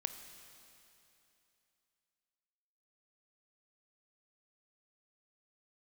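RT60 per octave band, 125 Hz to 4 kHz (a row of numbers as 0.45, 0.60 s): 2.9, 2.9, 2.9, 2.9, 2.9, 2.9 s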